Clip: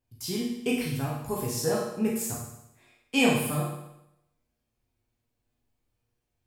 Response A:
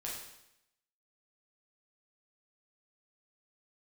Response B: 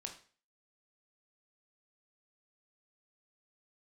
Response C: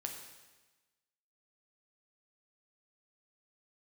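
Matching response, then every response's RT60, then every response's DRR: A; 0.80, 0.40, 1.2 s; -4.5, 3.0, 2.0 dB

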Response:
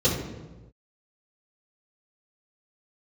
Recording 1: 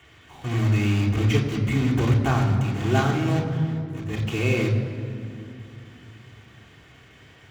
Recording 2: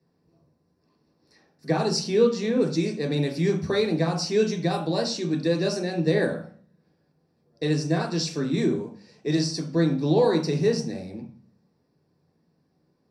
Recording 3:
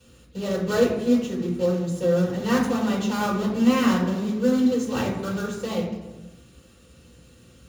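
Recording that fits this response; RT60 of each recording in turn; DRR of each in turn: 3; 2.6 s, 0.45 s, not exponential; -2.5, 0.5, -13.0 dB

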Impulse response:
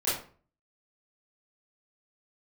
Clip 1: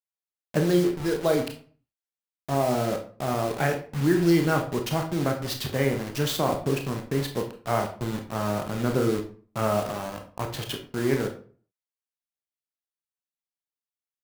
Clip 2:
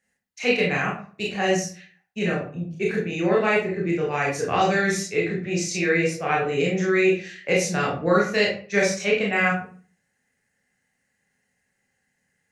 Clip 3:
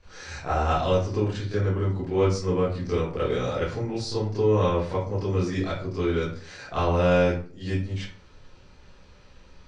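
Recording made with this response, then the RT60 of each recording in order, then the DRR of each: 3; 0.45, 0.45, 0.45 s; 4.0, -4.0, -12.0 dB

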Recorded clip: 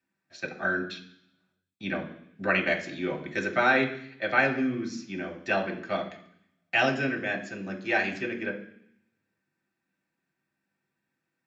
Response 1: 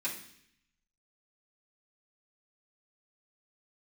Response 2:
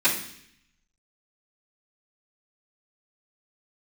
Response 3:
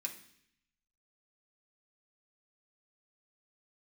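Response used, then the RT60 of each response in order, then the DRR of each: 3; 0.65, 0.65, 0.65 s; -10.5, -19.0, -0.5 dB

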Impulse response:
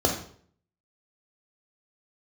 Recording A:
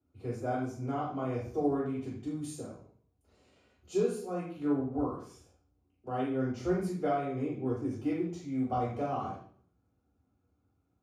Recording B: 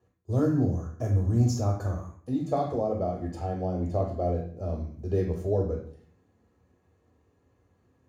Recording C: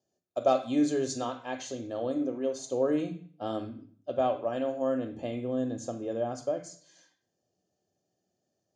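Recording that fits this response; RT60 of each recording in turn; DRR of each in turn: B; 0.55, 0.55, 0.55 s; -5.5, 2.0, 10.0 dB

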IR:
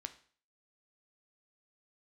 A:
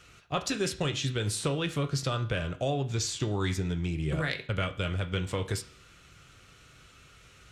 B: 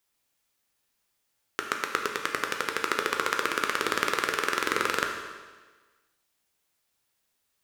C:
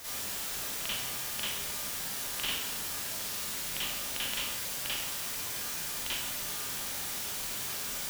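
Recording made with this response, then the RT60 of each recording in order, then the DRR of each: A; 0.45, 1.4, 0.75 s; 8.5, 2.0, -10.5 dB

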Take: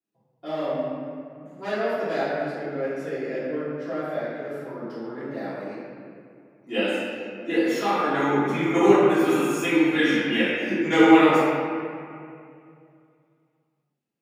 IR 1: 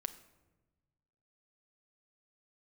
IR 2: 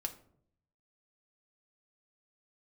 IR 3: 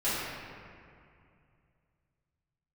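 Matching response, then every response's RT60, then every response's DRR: 3; 1.2, 0.65, 2.4 s; 9.0, 3.5, -14.5 dB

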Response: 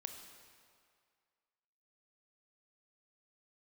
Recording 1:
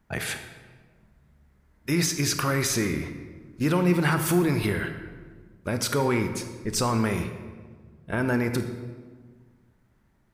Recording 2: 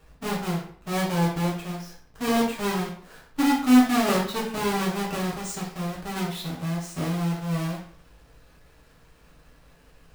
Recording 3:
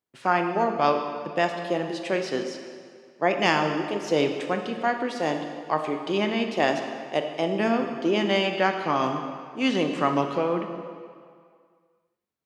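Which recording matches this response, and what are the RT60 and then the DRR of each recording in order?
3; 1.6, 0.55, 2.1 s; 7.0, -5.5, 5.0 dB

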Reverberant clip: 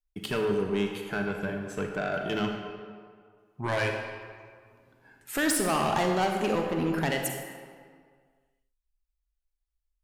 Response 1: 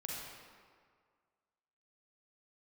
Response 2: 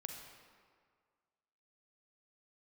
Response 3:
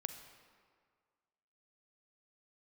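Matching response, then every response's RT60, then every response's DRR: 2; 1.9, 1.9, 1.9 s; -4.0, 2.5, 7.5 dB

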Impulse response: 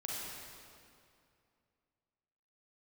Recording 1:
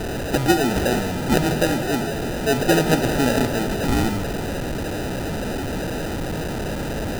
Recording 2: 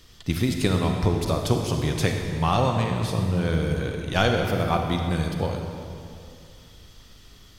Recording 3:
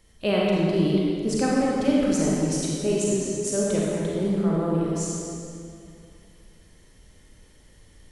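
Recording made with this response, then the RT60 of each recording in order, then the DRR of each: 3; 2.4, 2.5, 2.5 s; 8.5, 2.5, -5.0 dB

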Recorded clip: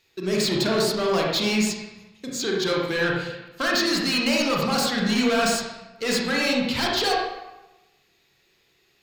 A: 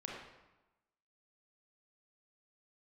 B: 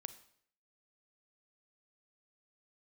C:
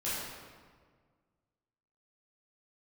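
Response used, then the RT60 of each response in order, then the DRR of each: A; 1.1, 0.60, 1.7 s; -2.5, 12.0, -11.0 dB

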